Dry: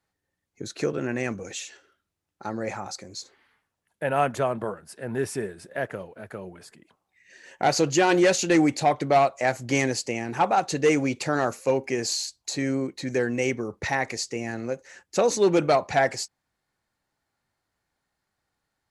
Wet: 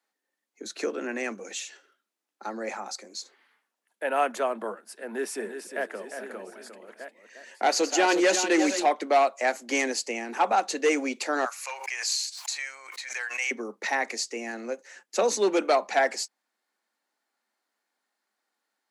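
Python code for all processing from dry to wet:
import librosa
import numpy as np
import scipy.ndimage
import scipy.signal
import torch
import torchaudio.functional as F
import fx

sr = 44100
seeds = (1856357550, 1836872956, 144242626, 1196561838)

y = fx.chain(x, sr, fx.reverse_delay(ms=696, wet_db=-11.0),
    fx.echo_single(ms=355, db=-8.5), at=(5.03, 8.86))
y = fx.chain(y, sr, fx.highpass(hz=930.0, slope=24),
    fx.peak_eq(hz=2300.0, db=3.5, octaves=0.39),
    fx.pre_swell(db_per_s=75.0), at=(11.45, 13.51))
y = scipy.signal.sosfilt(scipy.signal.butter(16, 200.0, 'highpass', fs=sr, output='sos'), y)
y = fx.low_shelf(y, sr, hz=330.0, db=-8.5)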